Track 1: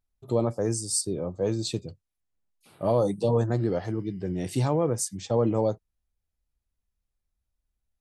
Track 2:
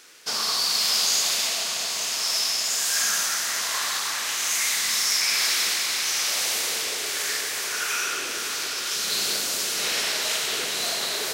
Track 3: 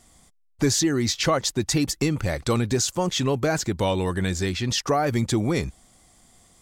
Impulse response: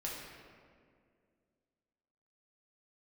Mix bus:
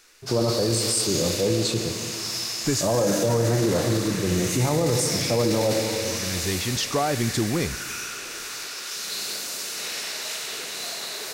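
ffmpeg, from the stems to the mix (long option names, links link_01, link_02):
-filter_complex "[0:a]volume=2.5dB,asplit=3[link_01][link_02][link_03];[link_02]volume=-3dB[link_04];[1:a]bandreject=frequency=3200:width=14,acrossover=split=360|3000[link_05][link_06][link_07];[link_06]acompressor=threshold=-29dB:ratio=6[link_08];[link_05][link_08][link_07]amix=inputs=3:normalize=0,volume=-5dB[link_09];[2:a]adelay=2050,volume=-2.5dB,asplit=2[link_10][link_11];[link_11]volume=-16.5dB[link_12];[link_03]apad=whole_len=382099[link_13];[link_10][link_13]sidechaincompress=threshold=-50dB:ratio=8:attack=16:release=373[link_14];[3:a]atrim=start_sample=2205[link_15];[link_04][link_12]amix=inputs=2:normalize=0[link_16];[link_16][link_15]afir=irnorm=-1:irlink=0[link_17];[link_01][link_09][link_14][link_17]amix=inputs=4:normalize=0,alimiter=limit=-13.5dB:level=0:latency=1:release=11"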